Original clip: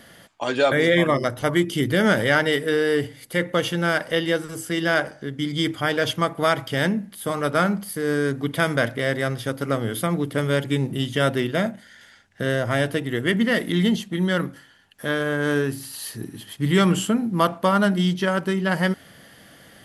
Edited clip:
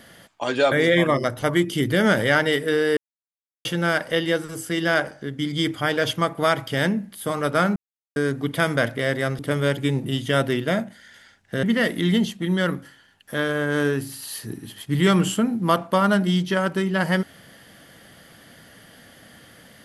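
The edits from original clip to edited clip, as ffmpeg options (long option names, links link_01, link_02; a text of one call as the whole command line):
ffmpeg -i in.wav -filter_complex "[0:a]asplit=7[link_01][link_02][link_03][link_04][link_05][link_06][link_07];[link_01]atrim=end=2.97,asetpts=PTS-STARTPTS,afade=type=out:start_time=2.966:duration=0.004:curve=hsin[link_08];[link_02]atrim=start=2.97:end=3.65,asetpts=PTS-STARTPTS,volume=0[link_09];[link_03]atrim=start=3.65:end=7.76,asetpts=PTS-STARTPTS,afade=type=in:duration=0.004:curve=hsin,afade=type=out:start_time=4.106:duration=0.004:curve=hsin[link_10];[link_04]atrim=start=7.76:end=8.16,asetpts=PTS-STARTPTS,volume=0[link_11];[link_05]atrim=start=8.16:end=9.392,asetpts=PTS-STARTPTS,afade=type=in:duration=0.004:curve=hsin[link_12];[link_06]atrim=start=10.258:end=12.502[link_13];[link_07]atrim=start=13.338[link_14];[link_08][link_09][link_10][link_11][link_12]concat=n=5:v=0:a=1[link_15];[link_15][link_13]acrossfade=duration=0.004:curve1=hsin:curve2=hsin[link_16];[link_16][link_14]acrossfade=duration=0.004:curve1=hsin:curve2=hsin" out.wav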